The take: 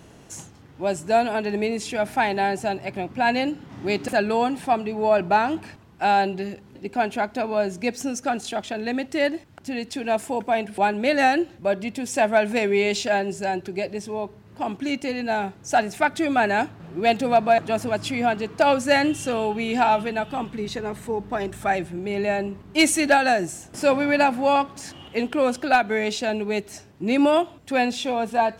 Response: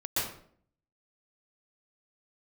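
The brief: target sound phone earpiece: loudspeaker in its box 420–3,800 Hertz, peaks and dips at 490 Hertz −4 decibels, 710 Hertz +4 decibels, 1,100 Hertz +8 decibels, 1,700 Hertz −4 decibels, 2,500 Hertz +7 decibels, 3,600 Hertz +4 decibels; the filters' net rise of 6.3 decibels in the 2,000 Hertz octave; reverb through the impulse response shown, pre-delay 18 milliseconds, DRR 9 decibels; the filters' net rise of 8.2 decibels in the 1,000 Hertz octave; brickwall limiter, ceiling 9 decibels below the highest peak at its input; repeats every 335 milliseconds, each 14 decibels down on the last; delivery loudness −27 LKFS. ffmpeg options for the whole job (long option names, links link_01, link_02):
-filter_complex "[0:a]equalizer=frequency=1000:width_type=o:gain=6.5,equalizer=frequency=2000:width_type=o:gain=4,alimiter=limit=-11dB:level=0:latency=1,aecho=1:1:335|670:0.2|0.0399,asplit=2[link_01][link_02];[1:a]atrim=start_sample=2205,adelay=18[link_03];[link_02][link_03]afir=irnorm=-1:irlink=0,volume=-16.5dB[link_04];[link_01][link_04]amix=inputs=2:normalize=0,highpass=420,equalizer=frequency=490:width_type=q:width=4:gain=-4,equalizer=frequency=710:width_type=q:width=4:gain=4,equalizer=frequency=1100:width_type=q:width=4:gain=8,equalizer=frequency=1700:width_type=q:width=4:gain=-4,equalizer=frequency=2500:width_type=q:width=4:gain=7,equalizer=frequency=3600:width_type=q:width=4:gain=4,lowpass=frequency=3800:width=0.5412,lowpass=frequency=3800:width=1.3066,volume=-6.5dB"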